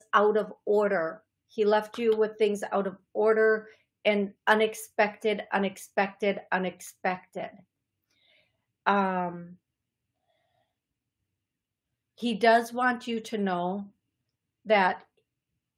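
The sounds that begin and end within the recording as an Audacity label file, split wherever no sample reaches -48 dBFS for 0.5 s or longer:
8.860000	9.550000	sound
12.180000	13.880000	sound
14.660000	15.020000	sound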